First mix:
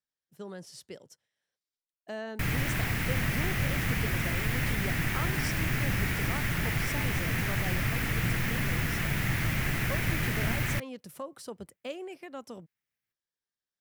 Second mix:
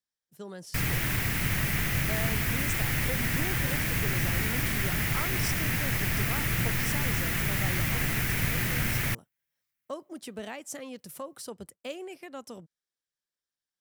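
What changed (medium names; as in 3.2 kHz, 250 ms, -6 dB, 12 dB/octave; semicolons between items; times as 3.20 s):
background: entry -1.65 s; master: add treble shelf 5 kHz +7.5 dB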